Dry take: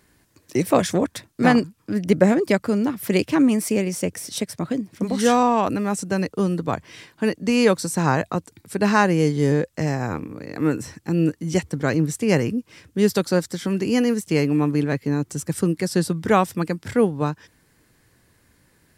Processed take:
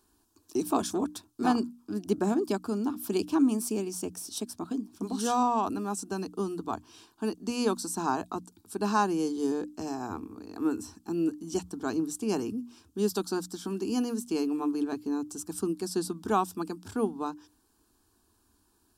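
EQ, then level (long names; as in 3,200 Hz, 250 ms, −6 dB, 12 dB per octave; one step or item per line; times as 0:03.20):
mains-hum notches 60/120/180/240/300 Hz
phaser with its sweep stopped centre 540 Hz, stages 6
−5.5 dB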